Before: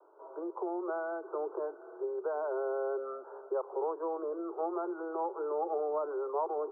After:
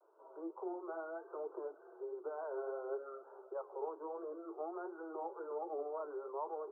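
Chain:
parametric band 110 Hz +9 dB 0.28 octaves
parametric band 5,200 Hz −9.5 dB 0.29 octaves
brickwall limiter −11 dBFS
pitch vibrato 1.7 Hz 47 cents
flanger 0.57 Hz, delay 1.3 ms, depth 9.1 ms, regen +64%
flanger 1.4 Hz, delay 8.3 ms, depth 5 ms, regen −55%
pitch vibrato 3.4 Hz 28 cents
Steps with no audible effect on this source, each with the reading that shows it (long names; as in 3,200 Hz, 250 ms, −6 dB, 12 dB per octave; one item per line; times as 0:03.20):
parametric band 110 Hz: nothing at its input below 290 Hz
parametric band 5,200 Hz: nothing at its input above 1,500 Hz
brickwall limiter −11 dBFS: peak of its input −21.0 dBFS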